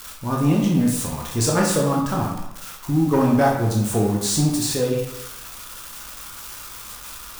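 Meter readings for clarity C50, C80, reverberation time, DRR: 3.0 dB, 6.0 dB, 0.90 s, -2.0 dB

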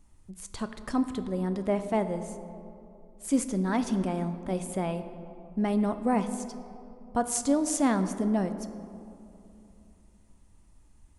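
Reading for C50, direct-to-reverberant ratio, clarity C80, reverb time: 11.0 dB, 9.0 dB, 11.5 dB, 2.8 s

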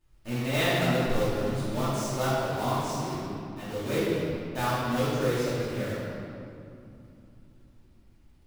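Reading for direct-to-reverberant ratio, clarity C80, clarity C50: -12.0 dB, -2.0 dB, -4.0 dB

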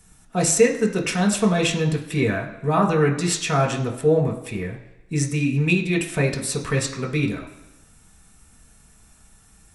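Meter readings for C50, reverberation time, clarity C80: 9.5 dB, 1.0 s, 12.0 dB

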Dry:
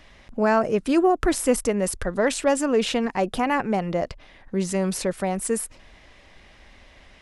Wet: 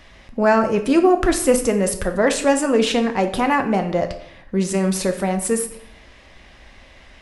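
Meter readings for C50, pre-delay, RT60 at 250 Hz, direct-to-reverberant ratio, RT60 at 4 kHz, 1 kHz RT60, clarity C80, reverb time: 11.0 dB, 5 ms, 0.70 s, 5.5 dB, 0.50 s, 0.65 s, 14.5 dB, 0.70 s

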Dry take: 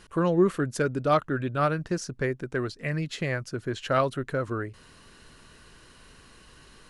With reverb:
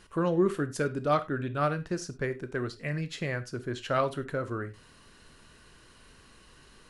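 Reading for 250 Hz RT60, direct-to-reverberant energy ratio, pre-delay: n/a, 11.0 dB, 7 ms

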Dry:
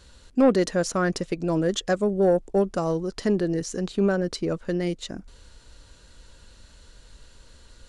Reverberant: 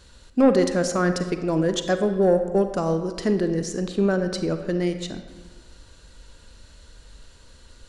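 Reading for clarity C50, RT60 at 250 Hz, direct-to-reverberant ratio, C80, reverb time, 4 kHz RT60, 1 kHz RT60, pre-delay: 9.0 dB, 1.5 s, 8.0 dB, 10.5 dB, 1.5 s, 0.90 s, 1.4 s, 35 ms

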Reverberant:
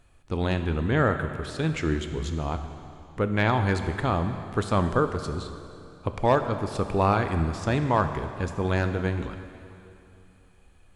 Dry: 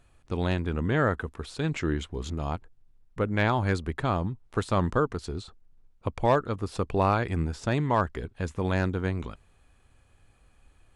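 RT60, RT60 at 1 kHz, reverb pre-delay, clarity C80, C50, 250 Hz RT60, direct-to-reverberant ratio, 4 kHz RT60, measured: 2.7 s, 2.7 s, 7 ms, 9.5 dB, 8.5 dB, 2.8 s, 7.5 dB, 2.5 s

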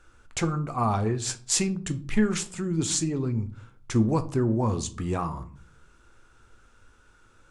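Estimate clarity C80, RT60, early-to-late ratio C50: 22.0 dB, 0.45 s, 17.0 dB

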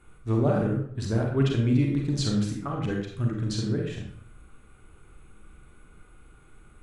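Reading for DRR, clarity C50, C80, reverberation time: 0.0 dB, 3.0 dB, 6.5 dB, 0.60 s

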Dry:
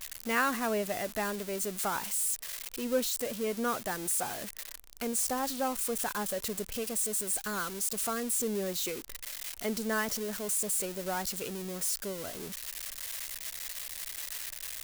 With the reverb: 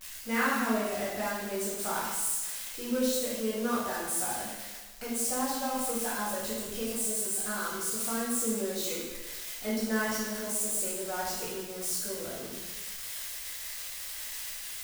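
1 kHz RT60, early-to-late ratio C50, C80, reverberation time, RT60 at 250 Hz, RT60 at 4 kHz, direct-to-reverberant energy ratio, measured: 1.2 s, -0.5 dB, 3.0 dB, 1.3 s, 1.2 s, 1.1 s, -7.5 dB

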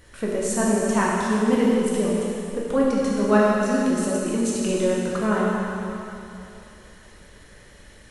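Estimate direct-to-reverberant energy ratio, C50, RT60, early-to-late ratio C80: -5.5 dB, -2.0 dB, 2.9 s, -1.0 dB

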